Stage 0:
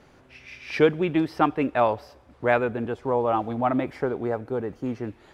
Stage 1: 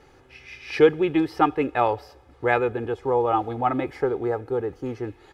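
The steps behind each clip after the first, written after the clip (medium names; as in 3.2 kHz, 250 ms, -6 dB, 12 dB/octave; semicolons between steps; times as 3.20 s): comb 2.4 ms, depth 57%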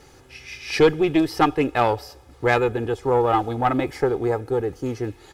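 tone controls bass +3 dB, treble +12 dB; valve stage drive 12 dB, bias 0.45; trim +4 dB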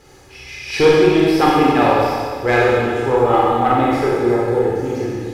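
Schroeder reverb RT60 1.9 s, combs from 30 ms, DRR -5.5 dB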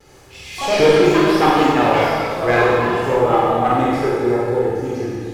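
ever faster or slower copies 83 ms, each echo +5 st, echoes 3, each echo -6 dB; vibrato 0.72 Hz 27 cents; trim -1.5 dB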